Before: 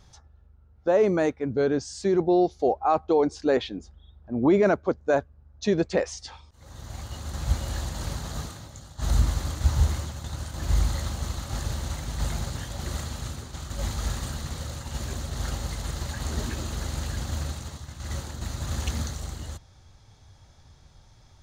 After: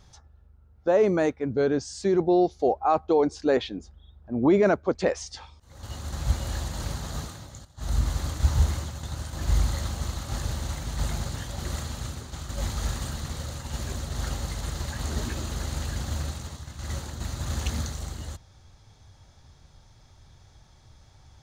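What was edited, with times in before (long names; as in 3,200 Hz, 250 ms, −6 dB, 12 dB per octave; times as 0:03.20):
0:04.95–0:05.86: remove
0:06.74–0:07.04: remove
0:08.86–0:09.43: fade in, from −12 dB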